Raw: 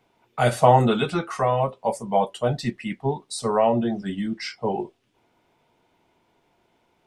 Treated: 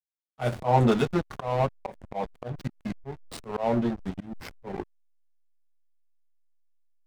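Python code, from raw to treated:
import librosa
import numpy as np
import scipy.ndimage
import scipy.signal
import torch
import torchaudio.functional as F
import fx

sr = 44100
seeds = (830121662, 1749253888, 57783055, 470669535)

y = fx.backlash(x, sr, play_db=-21.0)
y = fx.auto_swell(y, sr, attack_ms=186.0)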